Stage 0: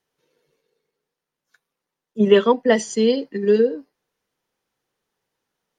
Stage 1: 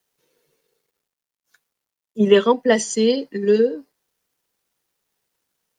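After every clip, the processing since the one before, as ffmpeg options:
-af "highshelf=f=7k:g=11,acrusher=bits=11:mix=0:aa=0.000001"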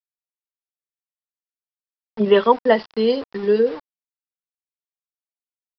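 -af "aresample=11025,aeval=exprs='val(0)*gte(abs(val(0)),0.0237)':c=same,aresample=44100,equalizer=f=870:t=o:w=1.5:g=9.5,volume=-4dB"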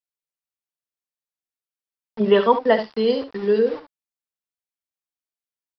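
-af "aecho=1:1:56|70:0.168|0.282,volume=-1.5dB"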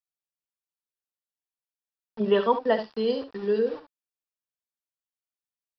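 -af "bandreject=f=2.1k:w=8,volume=-6dB"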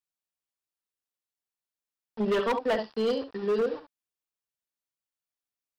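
-af "asoftclip=type=hard:threshold=-22dB"

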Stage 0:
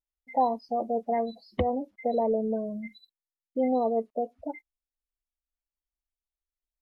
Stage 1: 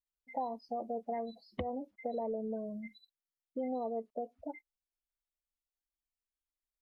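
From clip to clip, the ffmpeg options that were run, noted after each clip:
-af "acompressor=threshold=-28dB:ratio=3,volume=-6.5dB"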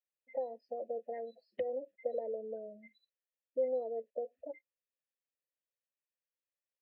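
-filter_complex "[0:a]asplit=3[a][b][c];[a]bandpass=f=530:t=q:w=8,volume=0dB[d];[b]bandpass=f=1.84k:t=q:w=8,volume=-6dB[e];[c]bandpass=f=2.48k:t=q:w=8,volume=-9dB[f];[d][e][f]amix=inputs=3:normalize=0,volume=8dB"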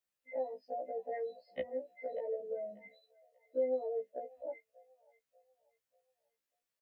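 -filter_complex "[0:a]acrossover=split=220|880[a][b][c];[b]acompressor=threshold=-43dB:ratio=6[d];[c]asplit=2[e][f];[f]adelay=589,lowpass=f=1.5k:p=1,volume=-13dB,asplit=2[g][h];[h]adelay=589,lowpass=f=1.5k:p=1,volume=0.45,asplit=2[i][j];[j]adelay=589,lowpass=f=1.5k:p=1,volume=0.45,asplit=2[k][l];[l]adelay=589,lowpass=f=1.5k:p=1,volume=0.45[m];[e][g][i][k][m]amix=inputs=5:normalize=0[n];[a][d][n]amix=inputs=3:normalize=0,afftfilt=real='re*1.73*eq(mod(b,3),0)':imag='im*1.73*eq(mod(b,3),0)':win_size=2048:overlap=0.75,volume=7dB"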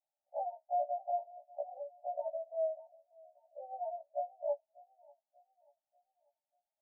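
-af "asuperpass=centerf=720:order=20:qfactor=2.1,volume=8.5dB"

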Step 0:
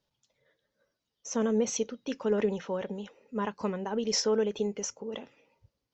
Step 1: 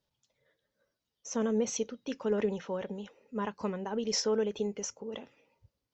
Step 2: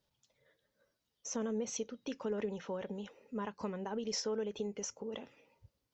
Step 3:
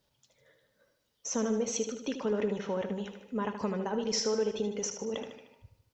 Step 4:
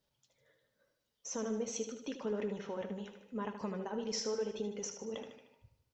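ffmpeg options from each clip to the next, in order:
-af "equalizer=f=78:w=1.5:g=3.5,volume=-2.5dB"
-af "acompressor=threshold=-42dB:ratio=2,volume=1.5dB"
-af "aecho=1:1:76|152|228|304|380|456:0.376|0.195|0.102|0.0528|0.0275|0.0143,volume=6dB"
-af "flanger=delay=4.4:depth=5.1:regen=-68:speed=0.86:shape=triangular,volume=-2.5dB"

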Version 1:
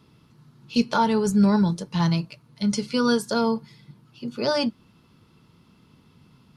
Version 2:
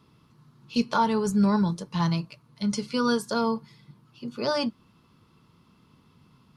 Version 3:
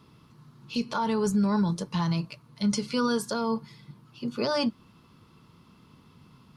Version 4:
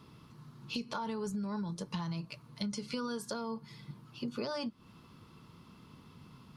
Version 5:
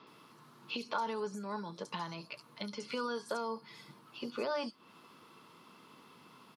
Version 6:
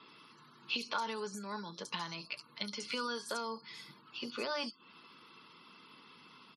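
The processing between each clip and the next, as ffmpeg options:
-af "equalizer=f=1.1k:t=o:w=0.36:g=6,volume=-3.5dB"
-af "alimiter=limit=-21.5dB:level=0:latency=1:release=101,volume=3.5dB"
-af "acompressor=threshold=-34dB:ratio=12"
-filter_complex "[0:a]highpass=380,acrossover=split=5000[a][b];[b]adelay=70[c];[a][c]amix=inputs=2:normalize=0,acrossover=split=3900[d][e];[e]acompressor=threshold=-56dB:ratio=4:attack=1:release=60[f];[d][f]amix=inputs=2:normalize=0,volume=4dB"
-af "equalizer=f=650:w=0.56:g=-9.5,afftfilt=real='re*gte(hypot(re,im),0.000447)':imag='im*gte(hypot(re,im),0.000447)':win_size=1024:overlap=0.75,highpass=f=360:p=1,volume=6.5dB"

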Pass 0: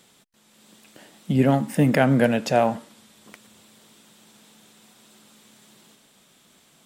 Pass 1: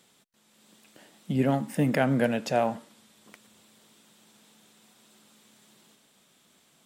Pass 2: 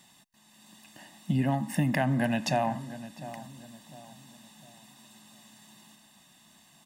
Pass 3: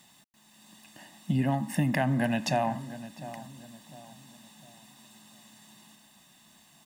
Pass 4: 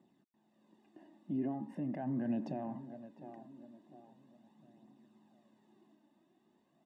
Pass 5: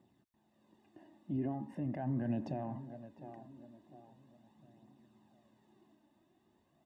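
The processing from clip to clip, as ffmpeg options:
-af "lowshelf=f=63:g=-7,volume=-5.5dB"
-filter_complex "[0:a]aecho=1:1:1.1:0.89,acompressor=threshold=-25dB:ratio=4,asplit=2[a][b];[b]adelay=703,lowpass=f=1.6k:p=1,volume=-14dB,asplit=2[c][d];[d]adelay=703,lowpass=f=1.6k:p=1,volume=0.4,asplit=2[e][f];[f]adelay=703,lowpass=f=1.6k:p=1,volume=0.4,asplit=2[g][h];[h]adelay=703,lowpass=f=1.6k:p=1,volume=0.4[i];[a][c][e][g][i]amix=inputs=5:normalize=0,volume=1.5dB"
-af "acrusher=bits=10:mix=0:aa=0.000001"
-af "alimiter=limit=-21.5dB:level=0:latency=1:release=40,bandpass=f=350:t=q:w=2.6:csg=0,flanger=delay=0.1:depth=3.4:regen=44:speed=0.41:shape=triangular,volume=6dB"
-af "lowshelf=f=130:t=q:w=1.5:g=11,volume=1dB"

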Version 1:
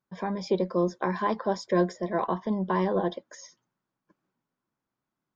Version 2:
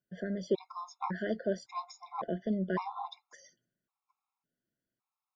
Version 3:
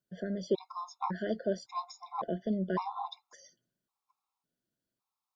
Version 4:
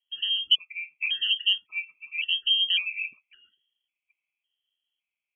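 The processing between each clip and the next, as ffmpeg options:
-af "afftfilt=real='re*gt(sin(2*PI*0.9*pts/sr)*(1-2*mod(floor(b*sr/1024/700),2)),0)':imag='im*gt(sin(2*PI*0.9*pts/sr)*(1-2*mod(floor(b*sr/1024/700),2)),0)':win_size=1024:overlap=0.75,volume=-3.5dB"
-af "equalizer=f=1k:t=o:w=1:g=3,equalizer=f=2k:t=o:w=1:g=-6,equalizer=f=4k:t=o:w=1:g=4"
-af "lowpass=f=2.9k:t=q:w=0.5098,lowpass=f=2.9k:t=q:w=0.6013,lowpass=f=2.9k:t=q:w=0.9,lowpass=f=2.9k:t=q:w=2.563,afreqshift=-3400,aexciter=amount=5.8:drive=2.5:freq=2.4k,volume=-4dB"

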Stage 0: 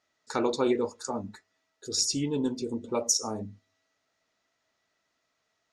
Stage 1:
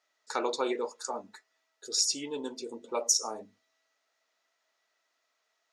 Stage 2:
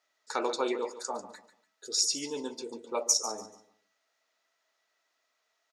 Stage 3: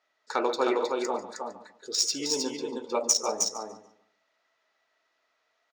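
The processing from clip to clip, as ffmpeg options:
-af "highpass=500"
-af "aecho=1:1:144|288|432:0.211|0.055|0.0143"
-af "adynamicsmooth=sensitivity=2:basefreq=4.7k,aecho=1:1:313:0.631,volume=4dB"

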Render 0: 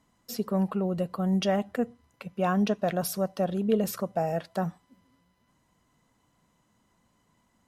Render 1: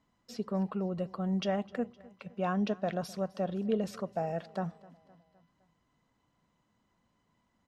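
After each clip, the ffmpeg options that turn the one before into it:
-af "lowpass=5.4k,aecho=1:1:257|514|771|1028:0.0794|0.0421|0.0223|0.0118,volume=-5.5dB"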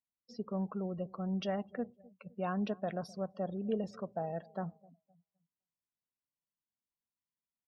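-af "afftdn=nr=28:nf=-47,volume=-4dB"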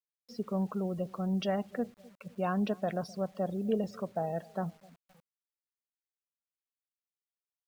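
-af "acrusher=bits=10:mix=0:aa=0.000001,volume=4dB"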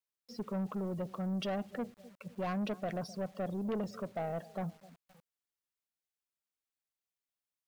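-af "asoftclip=type=tanh:threshold=-31dB"

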